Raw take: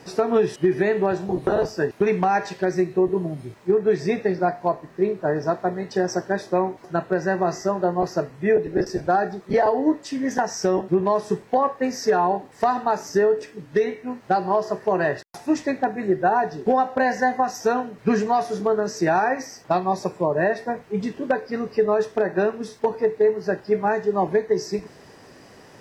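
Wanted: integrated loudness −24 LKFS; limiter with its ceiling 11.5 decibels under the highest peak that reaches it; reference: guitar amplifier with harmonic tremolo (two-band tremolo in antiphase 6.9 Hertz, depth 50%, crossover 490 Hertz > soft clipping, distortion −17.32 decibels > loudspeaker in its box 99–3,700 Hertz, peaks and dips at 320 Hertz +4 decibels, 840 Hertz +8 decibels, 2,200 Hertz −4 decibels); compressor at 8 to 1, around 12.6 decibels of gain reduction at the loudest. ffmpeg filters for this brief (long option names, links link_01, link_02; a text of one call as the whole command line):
ffmpeg -i in.wav -filter_complex "[0:a]acompressor=threshold=-28dB:ratio=8,alimiter=level_in=1.5dB:limit=-24dB:level=0:latency=1,volume=-1.5dB,acrossover=split=490[link_01][link_02];[link_01]aeval=exprs='val(0)*(1-0.5/2+0.5/2*cos(2*PI*6.9*n/s))':channel_layout=same[link_03];[link_02]aeval=exprs='val(0)*(1-0.5/2-0.5/2*cos(2*PI*6.9*n/s))':channel_layout=same[link_04];[link_03][link_04]amix=inputs=2:normalize=0,asoftclip=threshold=-31dB,highpass=99,equalizer=frequency=320:width_type=q:width=4:gain=4,equalizer=frequency=840:width_type=q:width=4:gain=8,equalizer=frequency=2200:width_type=q:width=4:gain=-4,lowpass=frequency=3700:width=0.5412,lowpass=frequency=3700:width=1.3066,volume=14dB" out.wav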